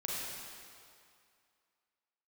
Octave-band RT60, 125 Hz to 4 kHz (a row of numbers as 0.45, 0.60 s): 2.1, 2.1, 2.2, 2.4, 2.2, 2.0 s